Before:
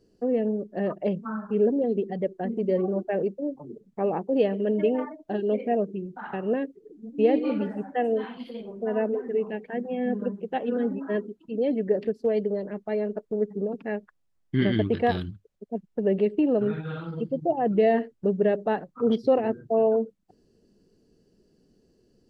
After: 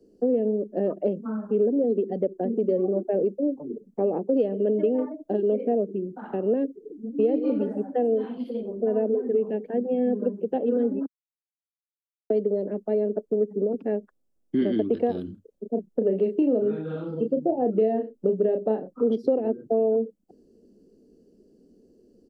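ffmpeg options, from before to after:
-filter_complex "[0:a]asplit=3[s0][s1][s2];[s0]afade=t=out:st=15.25:d=0.02[s3];[s1]asplit=2[s4][s5];[s5]adelay=32,volume=0.473[s6];[s4][s6]amix=inputs=2:normalize=0,afade=t=in:st=15.25:d=0.02,afade=t=out:st=19.03:d=0.02[s7];[s2]afade=t=in:st=19.03:d=0.02[s8];[s3][s7][s8]amix=inputs=3:normalize=0,asplit=3[s9][s10][s11];[s9]atrim=end=11.06,asetpts=PTS-STARTPTS,afade=t=out:st=11.056:d=0.004:c=hsin[s12];[s10]atrim=start=11.06:end=12.3,asetpts=PTS-STARTPTS,volume=0[s13];[s11]atrim=start=12.3,asetpts=PTS-STARTPTS,afade=t=in:d=0.004:c=hsin[s14];[s12][s13][s14]concat=n=3:v=0:a=1,equalizer=f=125:t=o:w=1:g=-7,equalizer=f=250:t=o:w=1:g=9,equalizer=f=500:t=o:w=1:g=7,equalizer=f=1000:t=o:w=1:g=-5,equalizer=f=2000:t=o:w=1:g=-9,equalizer=f=4000:t=o:w=1:g=-5,acrossover=split=120|250|900[s15][s16][s17][s18];[s15]acompressor=threshold=0.00282:ratio=4[s19];[s16]acompressor=threshold=0.0158:ratio=4[s20];[s17]acompressor=threshold=0.0794:ratio=4[s21];[s18]acompressor=threshold=0.00794:ratio=4[s22];[s19][s20][s21][s22]amix=inputs=4:normalize=0"

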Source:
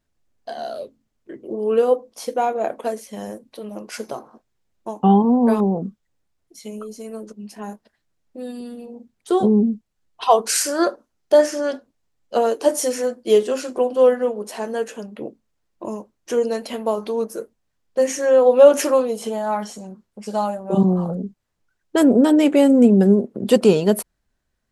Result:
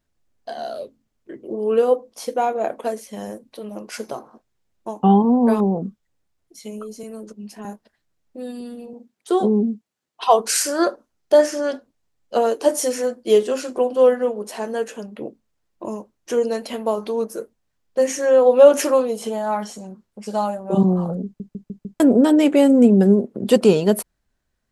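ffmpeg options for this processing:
-filter_complex "[0:a]asettb=1/sr,asplit=3[s0][s1][s2];[s0]atrim=end=7.034[s3];[s1]atrim=start=7.03:end=7.65,asetpts=PTS-STARTPTS,afade=t=in:d=0.004:c=qsin,afade=t=out:st=0.616:d=0.004:c=qsin,acrossover=split=270|3000[s4][s5][s6];[s5]acompressor=threshold=0.02:ratio=6:attack=3.2:release=140:knee=2.83:detection=peak[s7];[s4][s7][s6]amix=inputs=3:normalize=0[s8];[s2]atrim=start=7.646[s9];[s3][s8]acrossfade=d=0.004:c1=hsin:c2=qsin[s10];[s10][s9]acrossfade=d=0.004:c1=qsin:c2=hsin,asettb=1/sr,asplit=3[s11][s12][s13];[s11]atrim=end=8.934[s14];[s12]atrim=start=8.93:end=10.28,asetpts=PTS-STARTPTS,afade=t=in:d=0.004:c=qsin,afade=t=out:st=1.346:d=0.004:c=qsin,highpass=210[s15];[s13]atrim=start=10.276[s16];[s14][s15]acrossfade=d=0.004:c1=hsin:c2=qsin[s17];[s17][s16]acrossfade=d=0.004:c1=qsin:c2=hsin,asplit=6[s18][s19][s20][s21][s22][s23];[s18]atrim=end=21.402[s24];[s19]atrim=start=21.248:end=21.402[s25];[s20]atrim=start=21.248:end=21.402[s26];[s21]atrim=start=21.248:end=21.402[s27];[s22]atrim=start=21.248:end=21.402[s28];[s23]atrim=start=21.998[s29];[s24][s25]acrossfade=d=0.004:c1=hsin:c2=hsin[s30];[s30][s26]acrossfade=d=0.004:c1=hsin:c2=hsin[s31];[s31][s27]acrossfade=d=0.004:c1=hsin:c2=hsin[s32];[s32][s28]acrossfade=d=0.004:c1=hsin:c2=hsin[s33];[s33][s29]acrossfade=d=0.004:c1=hsin:c2=hsin"

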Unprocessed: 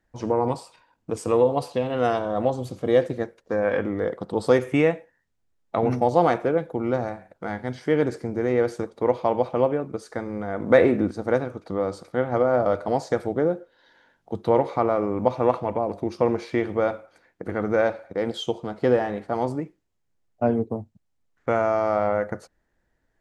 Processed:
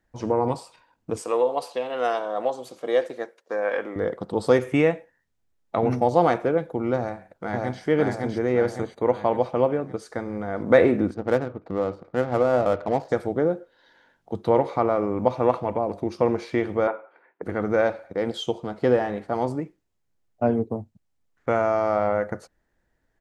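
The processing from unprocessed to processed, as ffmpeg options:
-filter_complex "[0:a]asettb=1/sr,asplit=3[s0][s1][s2];[s0]atrim=end=1.224[s3];[s1]atrim=start=1.22:end=3.96,asetpts=PTS-STARTPTS,afade=t=in:d=0.004:c=qsin,afade=t=out:st=2.736:d=0.004:c=qsin,highpass=470[s4];[s2]atrim=start=3.956[s5];[s3][s4]acrossfade=d=0.004:c1=hsin:c2=qsin[s6];[s6][s5]acrossfade=d=0.004:c1=qsin:c2=hsin,asplit=2[s7][s8];[s8]afade=t=in:st=6.97:d=0.01,afade=t=out:st=7.82:d=0.01,aecho=0:1:560|1120|1680|2240|2800|3360|3920:1|0.5|0.25|0.125|0.0625|0.03125|0.015625[s9];[s7][s9]amix=inputs=2:normalize=0,asettb=1/sr,asplit=3[s10][s11][s12];[s10]atrim=end=8.794[s13];[s11]atrim=start=8.79:end=9.4,asetpts=PTS-STARTPTS,afade=t=in:d=0.004:c=qsin,afade=t=out:st=0.606:d=0.004:c=qsin,asuperstop=centerf=5300:order=8:qfactor=5[s14];[s12]atrim=start=9.396[s15];[s13][s14]acrossfade=d=0.004:c1=hsin:c2=qsin[s16];[s16][s15]acrossfade=d=0.004:c1=qsin:c2=hsin,asplit=3[s17][s18][s19];[s17]afade=t=out:st=11.13:d=0.02[s20];[s18]adynamicsmooth=sensitivity=6:basefreq=1100,afade=t=in:st=11.13:d=0.02,afade=t=out:st=13.08:d=0.02[s21];[s19]afade=t=in:st=13.08:d=0.02[s22];[s20][s21][s22]amix=inputs=3:normalize=0,asettb=1/sr,asplit=3[s23][s24][s25];[s23]atrim=end=16.874[s26];[s24]atrim=start=16.87:end=17.42,asetpts=PTS-STARTPTS,afade=t=in:d=0.004:c=qsin,afade=t=out:st=0.546:d=0.004:c=qsin,highpass=370,equalizer=f=400:t=q:w=4:g=7,equalizer=f=950:t=q:w=4:g=7,equalizer=f=1400:t=q:w=4:g=3,lowpass=f=2600:w=0.5412,lowpass=f=2600:w=1.3066[s27];[s25]atrim=start=17.416[s28];[s26][s27]acrossfade=d=0.004:c1=hsin:c2=qsin[s29];[s29][s28]acrossfade=d=0.004:c1=qsin:c2=hsin"

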